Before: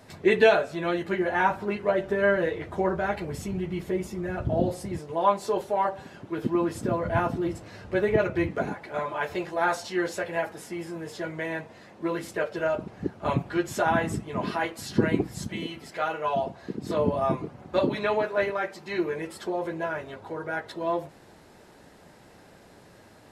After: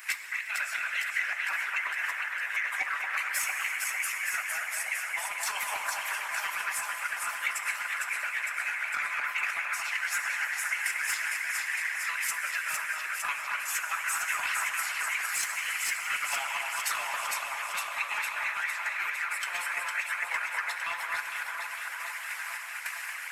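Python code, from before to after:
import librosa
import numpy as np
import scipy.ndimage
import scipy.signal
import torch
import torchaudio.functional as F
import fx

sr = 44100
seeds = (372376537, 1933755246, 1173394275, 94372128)

p1 = fx.reverse_delay(x, sr, ms=342, wet_db=-12.5)
p2 = scipy.signal.sosfilt(scipy.signal.butter(4, 1200.0, 'highpass', fs=sr, output='sos'), p1)
p3 = fx.tilt_eq(p2, sr, slope=4.5)
p4 = fx.tremolo_random(p3, sr, seeds[0], hz=3.5, depth_pct=80)
p5 = fx.high_shelf_res(p4, sr, hz=3000.0, db=-7.5, q=3.0)
p6 = fx.transient(p5, sr, attack_db=10, sustain_db=-3)
p7 = fx.over_compress(p6, sr, threshold_db=-39.0, ratio=-1.0)
p8 = p7 + fx.echo_alternate(p7, sr, ms=228, hz=2200.0, feedback_pct=80, wet_db=-2.5, dry=0)
p9 = 10.0 ** (-23.5 / 20.0) * np.tanh(p8 / 10.0 ** (-23.5 / 20.0))
p10 = fx.rev_plate(p9, sr, seeds[1], rt60_s=3.1, hf_ratio=0.75, predelay_ms=0, drr_db=2.0)
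p11 = fx.hpss(p10, sr, part='harmonic', gain_db=-15)
p12 = fx.band_squash(p11, sr, depth_pct=40)
y = F.gain(torch.from_numpy(p12), 7.5).numpy()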